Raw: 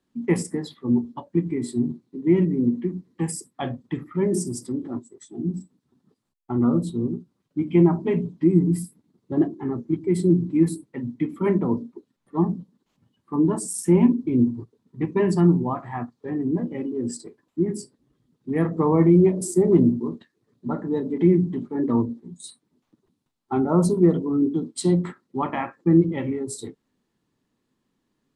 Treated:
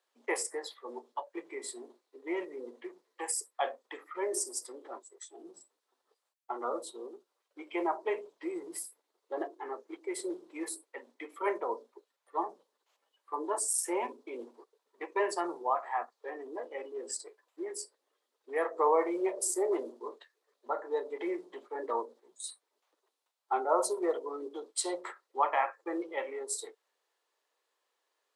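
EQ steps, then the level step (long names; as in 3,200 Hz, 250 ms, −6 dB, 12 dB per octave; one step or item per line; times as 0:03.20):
Butterworth high-pass 480 Hz 36 dB per octave
dynamic equaliser 3,200 Hz, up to −4 dB, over −51 dBFS, Q 1.4
0.0 dB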